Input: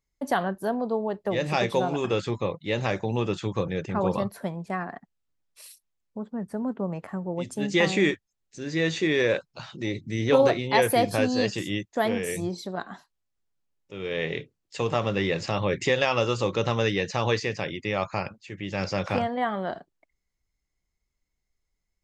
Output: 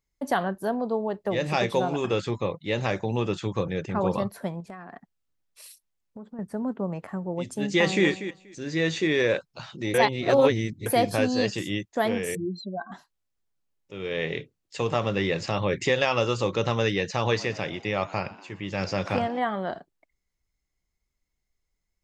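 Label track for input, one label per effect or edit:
4.600000	6.390000	compressor 5:1, threshold -37 dBFS
7.660000	8.060000	echo throw 0.24 s, feedback 15%, level -11.5 dB
9.940000	10.860000	reverse
12.350000	12.920000	spectral contrast raised exponent 3.2
17.130000	19.390000	frequency-shifting echo 0.12 s, feedback 58%, per repeat +88 Hz, level -19.5 dB

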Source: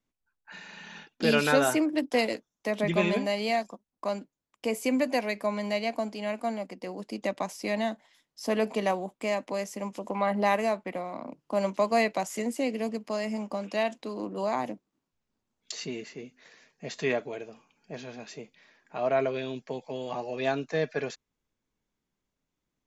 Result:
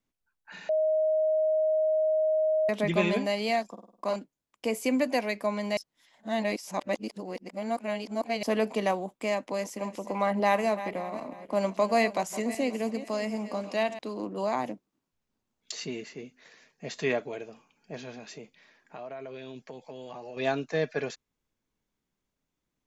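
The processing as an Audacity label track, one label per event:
0.690000	2.690000	bleep 626 Hz -22 dBFS
3.720000	4.160000	flutter echo walls apart 8.8 m, dies away in 0.56 s
5.770000	8.430000	reverse
9.320000	13.990000	regenerating reverse delay 0.269 s, feedback 45%, level -13 dB
18.130000	20.370000	compressor, threshold -38 dBFS

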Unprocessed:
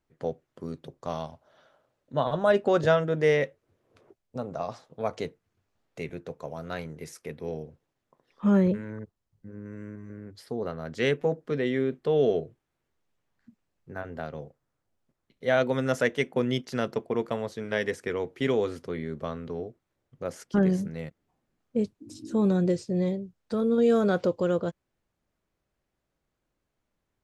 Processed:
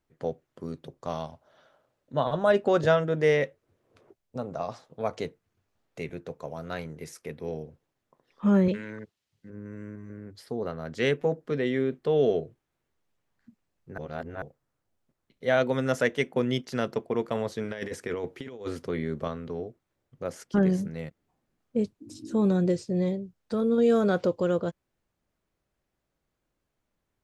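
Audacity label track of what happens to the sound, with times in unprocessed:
8.680000	9.500000	weighting filter D
13.980000	14.420000	reverse
17.350000	19.280000	negative-ratio compressor -31 dBFS, ratio -0.5

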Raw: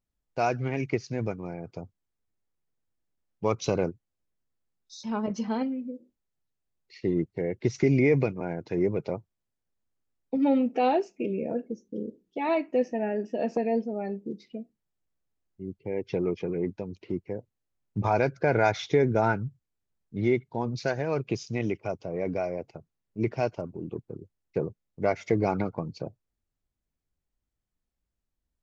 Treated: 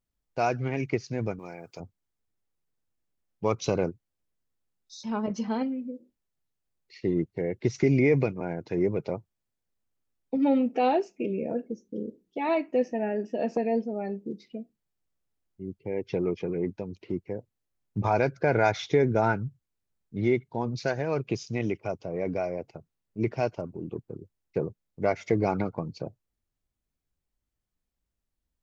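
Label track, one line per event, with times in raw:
1.390000	1.800000	tilt +3.5 dB/oct

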